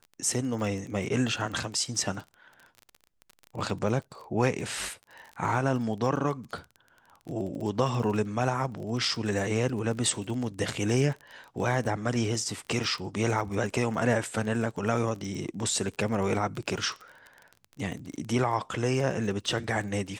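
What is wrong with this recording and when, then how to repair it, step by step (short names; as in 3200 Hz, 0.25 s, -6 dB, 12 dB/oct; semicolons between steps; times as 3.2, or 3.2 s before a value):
crackle 27/s -35 dBFS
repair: de-click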